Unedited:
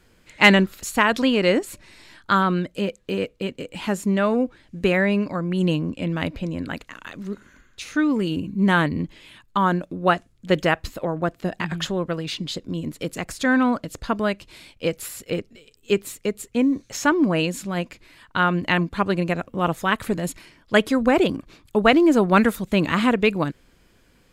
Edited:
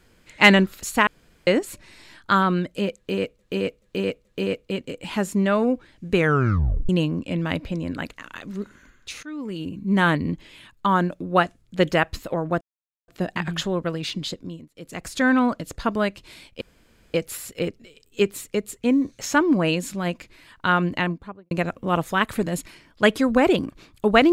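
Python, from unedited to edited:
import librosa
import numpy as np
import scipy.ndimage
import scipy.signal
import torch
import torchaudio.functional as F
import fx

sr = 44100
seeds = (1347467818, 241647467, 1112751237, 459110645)

y = fx.studio_fade_out(x, sr, start_s=18.51, length_s=0.71)
y = fx.edit(y, sr, fx.room_tone_fill(start_s=1.07, length_s=0.4),
    fx.repeat(start_s=2.96, length_s=0.43, count=4),
    fx.tape_stop(start_s=4.86, length_s=0.74),
    fx.fade_in_from(start_s=7.94, length_s=0.86, floor_db=-20.0),
    fx.insert_silence(at_s=11.32, length_s=0.47),
    fx.fade_down_up(start_s=12.51, length_s=0.87, db=-23.5, fade_s=0.41),
    fx.insert_room_tone(at_s=14.85, length_s=0.53), tone=tone)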